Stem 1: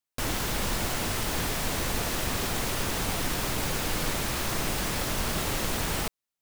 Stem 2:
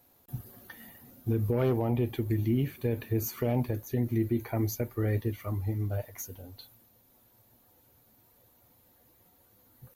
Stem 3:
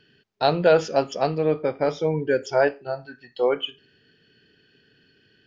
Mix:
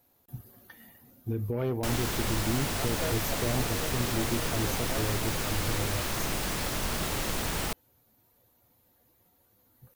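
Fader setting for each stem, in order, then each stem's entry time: −2.0, −3.5, −20.0 decibels; 1.65, 0.00, 2.35 seconds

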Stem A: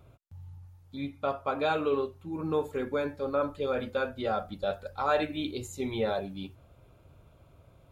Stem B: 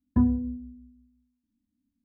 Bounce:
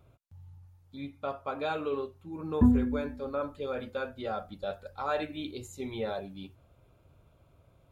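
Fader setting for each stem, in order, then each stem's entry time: −4.5, 0.0 decibels; 0.00, 2.45 seconds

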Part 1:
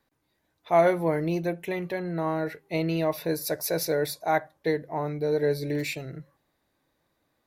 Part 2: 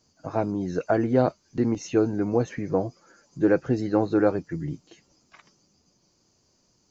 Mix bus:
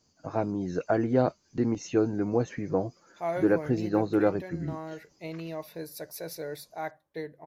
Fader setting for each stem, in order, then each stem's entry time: −11.0, −3.0 decibels; 2.50, 0.00 seconds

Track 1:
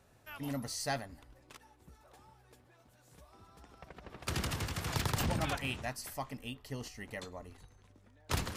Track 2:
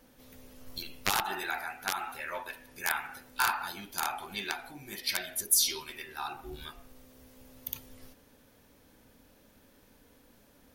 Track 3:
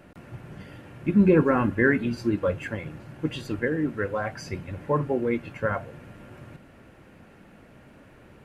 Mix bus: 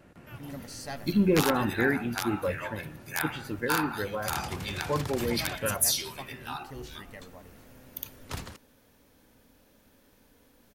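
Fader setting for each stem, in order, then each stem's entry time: −3.5, −0.5, −5.0 decibels; 0.00, 0.30, 0.00 seconds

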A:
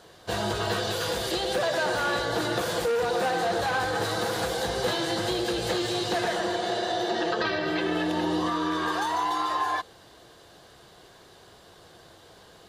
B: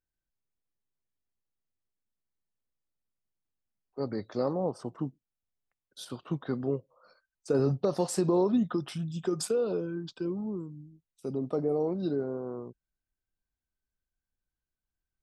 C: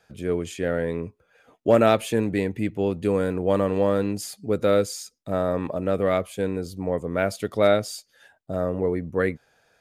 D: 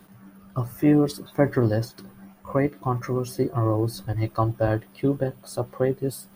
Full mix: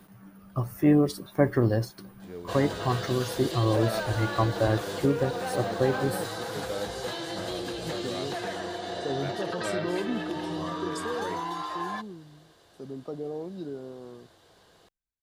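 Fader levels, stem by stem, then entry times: −7.0, −6.5, −16.0, −2.0 decibels; 2.20, 1.55, 2.05, 0.00 seconds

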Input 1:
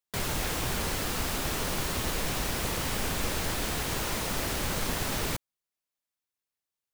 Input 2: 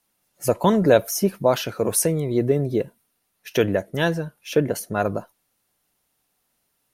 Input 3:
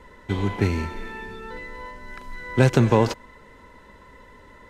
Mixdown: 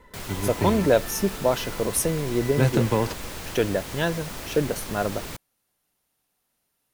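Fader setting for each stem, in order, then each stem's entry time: −5.0, −3.5, −5.0 decibels; 0.00, 0.00, 0.00 seconds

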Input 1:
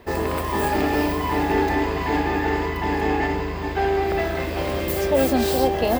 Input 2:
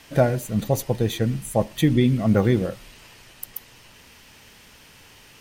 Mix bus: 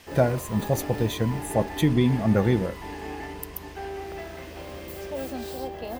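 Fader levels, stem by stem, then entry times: −14.0, −2.5 decibels; 0.00, 0.00 seconds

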